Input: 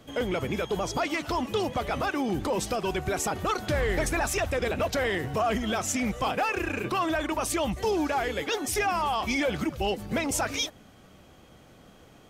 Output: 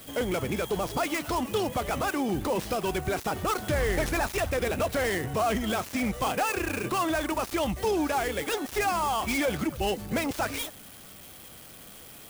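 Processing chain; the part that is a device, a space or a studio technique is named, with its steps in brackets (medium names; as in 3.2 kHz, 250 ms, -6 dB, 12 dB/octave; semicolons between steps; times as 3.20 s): budget class-D amplifier (dead-time distortion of 0.1 ms; zero-crossing glitches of -32 dBFS)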